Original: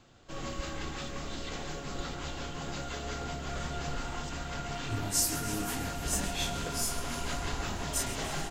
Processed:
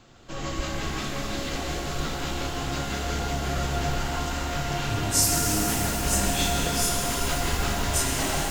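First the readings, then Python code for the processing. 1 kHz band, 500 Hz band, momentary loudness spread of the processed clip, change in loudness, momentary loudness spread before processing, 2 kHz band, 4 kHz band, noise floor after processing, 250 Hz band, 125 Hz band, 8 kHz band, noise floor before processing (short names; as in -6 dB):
+8.5 dB, +8.5 dB, 8 LU, +8.5 dB, 9 LU, +8.5 dB, +8.5 dB, -32 dBFS, +8.5 dB, +9.0 dB, +8.0 dB, -41 dBFS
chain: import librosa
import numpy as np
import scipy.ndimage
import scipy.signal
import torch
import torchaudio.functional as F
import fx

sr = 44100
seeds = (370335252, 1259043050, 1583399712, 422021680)

y = fx.rev_shimmer(x, sr, seeds[0], rt60_s=3.8, semitones=12, shimmer_db=-8, drr_db=1.0)
y = y * librosa.db_to_amplitude(5.5)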